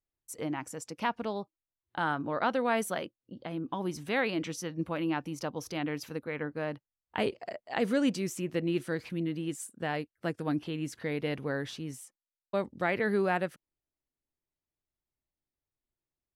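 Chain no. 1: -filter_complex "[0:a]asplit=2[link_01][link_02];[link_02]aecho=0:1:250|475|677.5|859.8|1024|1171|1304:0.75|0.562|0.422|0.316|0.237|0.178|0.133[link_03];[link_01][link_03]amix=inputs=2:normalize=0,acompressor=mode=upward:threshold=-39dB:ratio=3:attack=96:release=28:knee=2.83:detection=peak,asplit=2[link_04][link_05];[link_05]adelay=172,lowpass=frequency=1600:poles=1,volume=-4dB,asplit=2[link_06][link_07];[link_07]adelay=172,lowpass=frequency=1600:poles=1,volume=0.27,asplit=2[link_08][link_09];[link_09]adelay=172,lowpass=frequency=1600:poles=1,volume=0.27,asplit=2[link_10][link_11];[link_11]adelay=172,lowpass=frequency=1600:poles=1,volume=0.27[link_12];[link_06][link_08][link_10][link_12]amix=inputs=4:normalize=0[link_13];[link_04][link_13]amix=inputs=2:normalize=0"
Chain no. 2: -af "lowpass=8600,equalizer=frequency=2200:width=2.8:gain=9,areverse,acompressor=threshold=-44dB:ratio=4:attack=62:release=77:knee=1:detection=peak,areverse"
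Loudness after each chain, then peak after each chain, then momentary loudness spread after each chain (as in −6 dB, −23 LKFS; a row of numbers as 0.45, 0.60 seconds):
−29.0, −40.5 LKFS; −12.5, −22.5 dBFS; 7, 6 LU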